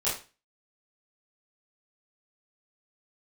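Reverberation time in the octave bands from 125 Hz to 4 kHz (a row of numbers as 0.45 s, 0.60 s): 0.40 s, 0.35 s, 0.30 s, 0.30 s, 0.30 s, 0.30 s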